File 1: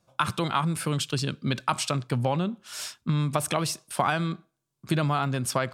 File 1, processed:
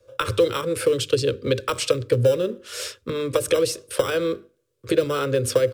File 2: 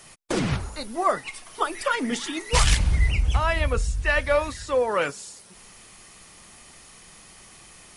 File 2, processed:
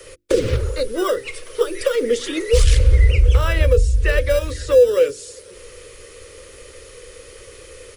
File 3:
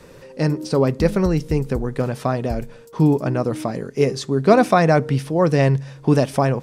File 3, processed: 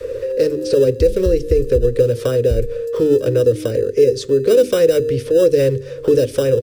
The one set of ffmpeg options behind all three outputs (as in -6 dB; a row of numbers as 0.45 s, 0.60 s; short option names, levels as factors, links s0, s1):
-filter_complex "[0:a]asplit=2[s0][s1];[s1]acompressor=threshold=0.0562:ratio=6,volume=1[s2];[s0][s2]amix=inputs=2:normalize=0,bandreject=f=50:t=h:w=6,bandreject=f=100:t=h:w=6,bandreject=f=150:t=h:w=6,bandreject=f=200:t=h:w=6,bandreject=f=250:t=h:w=6,bandreject=f=300:t=h:w=6,bandreject=f=350:t=h:w=6,bandreject=f=400:t=h:w=6,acrossover=split=540|1000[s3][s4][s5];[s4]acrusher=samples=20:mix=1:aa=0.000001[s6];[s3][s6][s5]amix=inputs=3:normalize=0,firequalizer=gain_entry='entry(110,0);entry(150,-22);entry(500,15);entry(710,-18);entry(1200,-6);entry(6100,-10)':delay=0.05:min_phase=1,acrossover=split=320|3000[s7][s8][s9];[s8]acompressor=threshold=0.0398:ratio=3[s10];[s7][s10][s9]amix=inputs=3:normalize=0,alimiter=level_in=3.16:limit=0.891:release=50:level=0:latency=1,volume=0.708"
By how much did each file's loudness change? +4.5 LU, +6.5 LU, +3.5 LU